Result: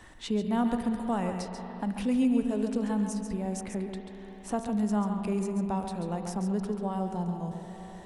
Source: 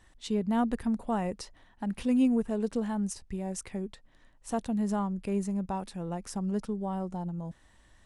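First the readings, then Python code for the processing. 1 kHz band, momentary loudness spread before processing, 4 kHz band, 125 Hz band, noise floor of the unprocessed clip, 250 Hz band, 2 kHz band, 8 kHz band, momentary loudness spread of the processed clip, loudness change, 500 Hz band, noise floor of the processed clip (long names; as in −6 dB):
+2.0 dB, 11 LU, +1.5 dB, +2.0 dB, −61 dBFS, +1.5 dB, +2.0 dB, −0.5 dB, 10 LU, +1.0 dB, +1.5 dB, −46 dBFS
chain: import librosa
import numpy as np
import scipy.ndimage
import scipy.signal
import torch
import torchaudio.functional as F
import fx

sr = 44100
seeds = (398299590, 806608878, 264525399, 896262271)

y = x + 10.0 ** (-8.0 / 20.0) * np.pad(x, (int(137 * sr / 1000.0), 0))[:len(x)]
y = fx.rev_spring(y, sr, rt60_s=3.1, pass_ms=(38, 51), chirp_ms=35, drr_db=8.0)
y = fx.band_squash(y, sr, depth_pct=40)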